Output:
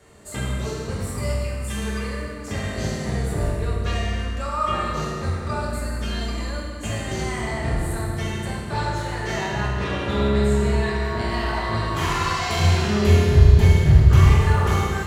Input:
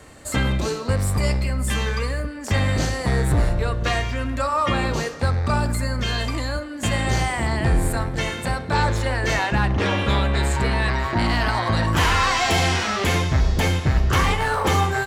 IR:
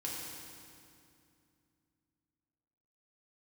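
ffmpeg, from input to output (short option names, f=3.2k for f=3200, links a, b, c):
-filter_complex "[0:a]asettb=1/sr,asplit=3[a][b][c];[a]atrim=end=12.604[d];[b]atrim=start=12.6:end=14.66,asetpts=PTS-STARTPTS,afade=t=in:d=0.004:c=qsin,afade=t=out:st=2.056:d=0.004:c=qsin,equalizer=f=82:w=0.39:g=12[e];[c]atrim=start=14.656[f];[d][e]acrossfade=d=0.004:c1=hsin:c2=qsin[g];[g][f]acrossfade=d=0.004:c1=qsin:c2=hsin[h];[1:a]atrim=start_sample=2205,asetrate=57330,aresample=44100[i];[h][i]afir=irnorm=-1:irlink=0,volume=-3.5dB"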